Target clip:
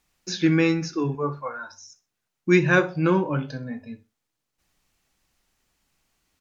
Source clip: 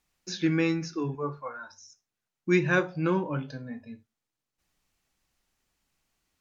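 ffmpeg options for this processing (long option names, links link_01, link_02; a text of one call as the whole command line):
ffmpeg -i in.wav -af "aecho=1:1:63|126:0.106|0.0286,volume=5.5dB" out.wav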